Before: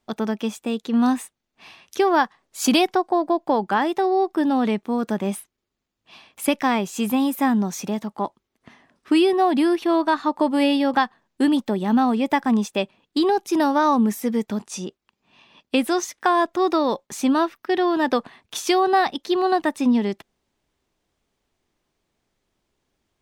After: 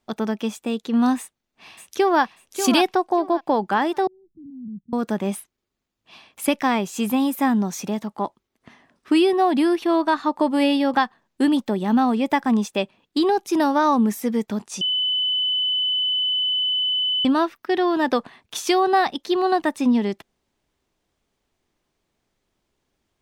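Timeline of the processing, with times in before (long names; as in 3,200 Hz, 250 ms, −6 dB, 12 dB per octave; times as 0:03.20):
0:01.18–0:02.22: delay throw 590 ms, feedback 25%, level −8 dB
0:04.07–0:04.93: inverse Chebyshev low-pass filter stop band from 570 Hz, stop band 60 dB
0:14.81–0:17.25: beep over 3,010 Hz −19 dBFS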